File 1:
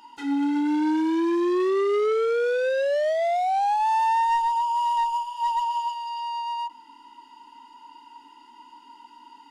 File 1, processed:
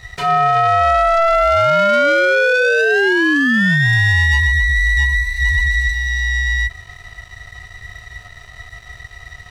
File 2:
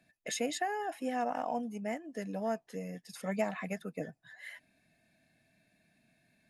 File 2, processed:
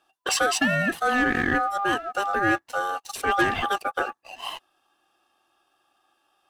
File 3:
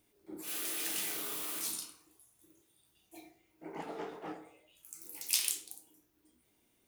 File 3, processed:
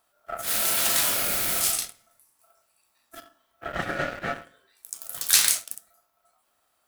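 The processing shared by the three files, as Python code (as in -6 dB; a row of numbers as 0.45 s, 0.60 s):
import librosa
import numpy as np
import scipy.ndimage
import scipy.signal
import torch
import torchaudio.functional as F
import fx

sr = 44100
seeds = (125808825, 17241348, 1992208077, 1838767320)

y = fx.leveller(x, sr, passes=2)
y = y * np.sin(2.0 * np.pi * 1000.0 * np.arange(len(y)) / sr)
y = F.gain(torch.from_numpy(y), 9.0).numpy()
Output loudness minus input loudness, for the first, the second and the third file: +10.0 LU, +12.5 LU, +13.0 LU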